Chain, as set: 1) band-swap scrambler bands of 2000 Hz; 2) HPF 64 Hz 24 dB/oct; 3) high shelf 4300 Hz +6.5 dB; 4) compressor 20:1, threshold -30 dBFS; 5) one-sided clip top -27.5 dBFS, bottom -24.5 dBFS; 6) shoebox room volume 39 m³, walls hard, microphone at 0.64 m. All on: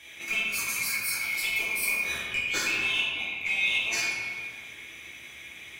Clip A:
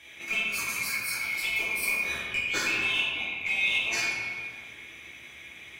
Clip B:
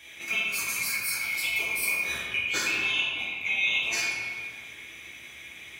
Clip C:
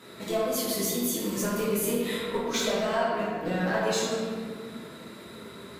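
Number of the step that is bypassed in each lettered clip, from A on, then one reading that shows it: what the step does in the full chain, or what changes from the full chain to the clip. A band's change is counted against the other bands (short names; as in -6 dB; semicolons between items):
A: 3, 8 kHz band -4.5 dB; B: 5, distortion -21 dB; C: 1, 2 kHz band -22.0 dB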